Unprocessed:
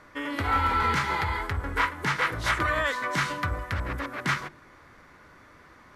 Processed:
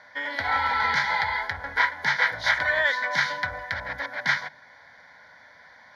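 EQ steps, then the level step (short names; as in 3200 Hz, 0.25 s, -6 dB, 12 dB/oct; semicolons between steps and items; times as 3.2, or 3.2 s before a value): HPF 880 Hz 6 dB/oct; air absorption 64 m; fixed phaser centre 1800 Hz, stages 8; +8.5 dB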